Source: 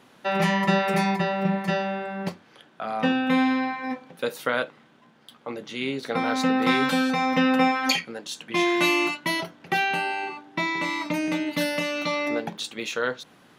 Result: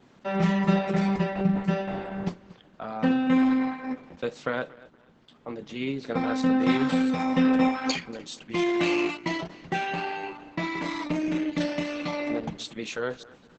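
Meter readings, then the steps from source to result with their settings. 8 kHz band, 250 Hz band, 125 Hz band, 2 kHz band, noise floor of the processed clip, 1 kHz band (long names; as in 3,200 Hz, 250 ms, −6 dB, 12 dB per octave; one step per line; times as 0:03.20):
−6.5 dB, +1.0 dB, +1.5 dB, −7.5 dB, −57 dBFS, −5.5 dB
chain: low-shelf EQ 410 Hz +9.5 dB
repeating echo 235 ms, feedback 30%, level −20 dB
level −6 dB
Opus 10 kbit/s 48,000 Hz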